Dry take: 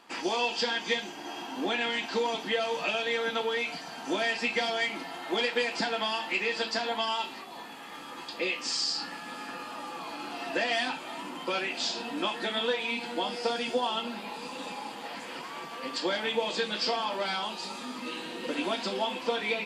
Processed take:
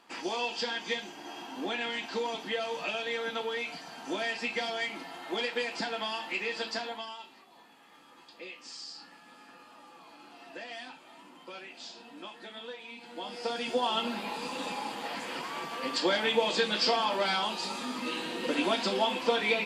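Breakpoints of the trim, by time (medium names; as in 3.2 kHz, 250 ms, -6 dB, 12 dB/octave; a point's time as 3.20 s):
6.78 s -4 dB
7.18 s -14 dB
12.96 s -14 dB
13.40 s -5 dB
14.04 s +2.5 dB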